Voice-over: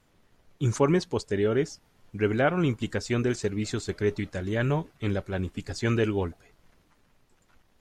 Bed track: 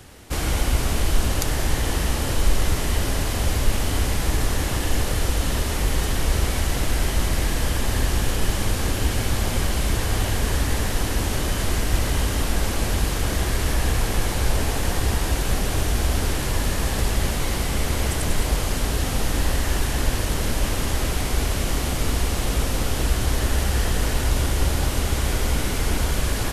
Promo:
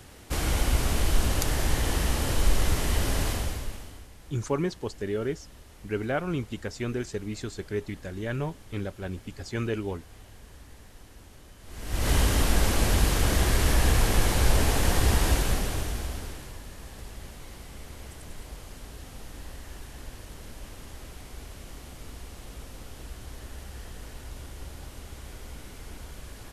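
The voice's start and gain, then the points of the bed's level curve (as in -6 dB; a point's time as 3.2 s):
3.70 s, -5.0 dB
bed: 3.29 s -3.5 dB
4.09 s -27 dB
11.61 s -27 dB
12.1 s -0.5 dB
15.31 s -0.5 dB
16.62 s -20 dB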